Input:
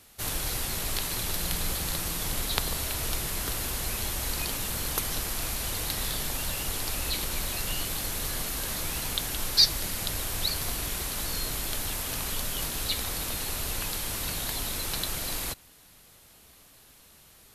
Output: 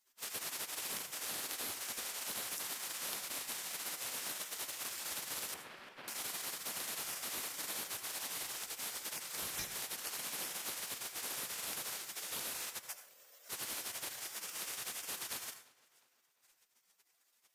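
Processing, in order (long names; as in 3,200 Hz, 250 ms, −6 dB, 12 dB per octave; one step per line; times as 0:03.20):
0:12.78–0:13.50: Butterworth high-pass 750 Hz 36 dB per octave
gate on every frequency bin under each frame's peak −20 dB weak
downward compressor, threshold −34 dBFS, peak gain reduction 6.5 dB
floating-point word with a short mantissa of 2 bits
0:05.54–0:06.08: high-frequency loss of the air 390 metres
tape delay 350 ms, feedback 49%, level −22.5 dB, low-pass 4,900 Hz
on a send at −9 dB: convolution reverb RT60 0.40 s, pre-delay 67 ms
on the sum: level −3.5 dB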